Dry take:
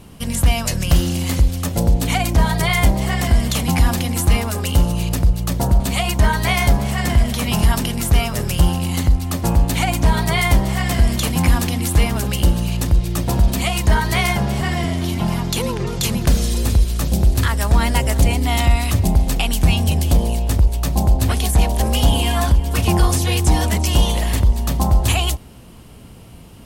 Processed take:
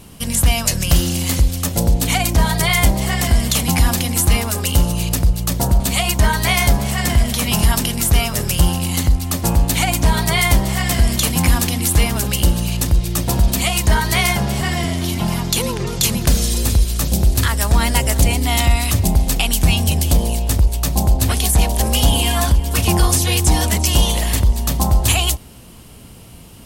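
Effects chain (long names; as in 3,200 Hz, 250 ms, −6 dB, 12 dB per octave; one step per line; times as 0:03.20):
high-shelf EQ 3,400 Hz +7.5 dB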